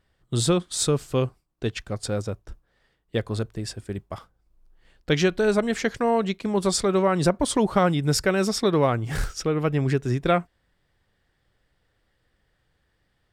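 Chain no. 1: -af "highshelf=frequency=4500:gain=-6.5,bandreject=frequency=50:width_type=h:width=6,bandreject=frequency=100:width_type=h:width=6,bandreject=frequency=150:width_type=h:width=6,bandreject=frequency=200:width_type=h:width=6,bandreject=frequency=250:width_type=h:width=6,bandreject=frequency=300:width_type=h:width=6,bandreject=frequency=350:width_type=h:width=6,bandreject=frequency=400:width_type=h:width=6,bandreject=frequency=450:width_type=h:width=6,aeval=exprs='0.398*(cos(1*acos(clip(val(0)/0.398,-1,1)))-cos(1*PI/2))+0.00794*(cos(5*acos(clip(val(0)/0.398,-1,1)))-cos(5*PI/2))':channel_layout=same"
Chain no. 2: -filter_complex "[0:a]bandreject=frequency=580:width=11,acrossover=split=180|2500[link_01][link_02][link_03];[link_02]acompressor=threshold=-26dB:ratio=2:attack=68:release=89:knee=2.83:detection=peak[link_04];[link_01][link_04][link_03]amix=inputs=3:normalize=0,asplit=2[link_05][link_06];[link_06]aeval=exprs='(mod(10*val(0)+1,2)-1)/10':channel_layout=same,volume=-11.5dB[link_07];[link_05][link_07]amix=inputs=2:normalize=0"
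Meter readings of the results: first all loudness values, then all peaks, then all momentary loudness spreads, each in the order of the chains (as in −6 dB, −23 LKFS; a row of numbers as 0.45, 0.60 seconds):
−24.5, −24.5 LKFS; −8.0, −6.5 dBFS; 13, 9 LU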